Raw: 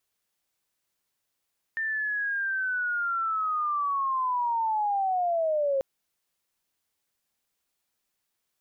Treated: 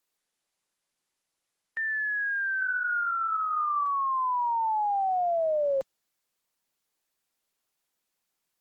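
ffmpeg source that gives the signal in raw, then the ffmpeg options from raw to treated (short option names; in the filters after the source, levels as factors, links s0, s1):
-f lavfi -i "aevalsrc='pow(10,(-26.5+4*t/4.04)/20)*sin(2*PI*(1800*t-1270*t*t/(2*4.04)))':d=4.04:s=44100"
-af "highpass=f=140:w=0.5412,highpass=f=140:w=1.3066" -ar 48000 -c:a libopus -b:a 16k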